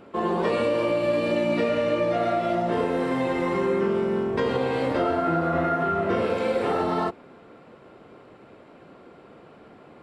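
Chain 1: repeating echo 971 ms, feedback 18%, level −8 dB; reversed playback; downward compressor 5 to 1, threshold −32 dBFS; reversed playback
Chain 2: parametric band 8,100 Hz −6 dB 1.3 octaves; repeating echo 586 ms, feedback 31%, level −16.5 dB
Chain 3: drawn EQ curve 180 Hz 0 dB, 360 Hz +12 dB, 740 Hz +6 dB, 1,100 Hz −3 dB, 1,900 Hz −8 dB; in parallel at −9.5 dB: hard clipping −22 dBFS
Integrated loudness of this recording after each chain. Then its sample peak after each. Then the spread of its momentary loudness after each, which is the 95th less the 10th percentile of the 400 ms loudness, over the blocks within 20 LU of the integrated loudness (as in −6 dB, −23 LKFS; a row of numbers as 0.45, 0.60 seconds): −35.0, −24.5, −15.5 LKFS; −22.5, −12.5, −4.0 dBFS; 11, 3, 3 LU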